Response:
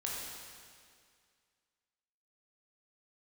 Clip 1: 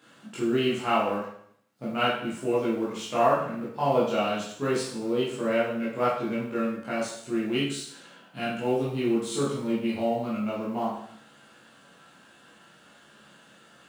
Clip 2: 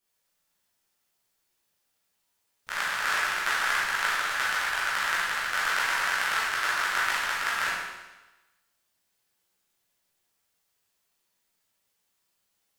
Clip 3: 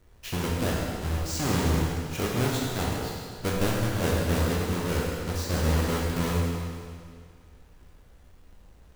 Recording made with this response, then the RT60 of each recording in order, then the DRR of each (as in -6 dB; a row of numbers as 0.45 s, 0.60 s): 3; 0.65 s, 1.1 s, 2.1 s; -9.0 dB, -8.5 dB, -4.0 dB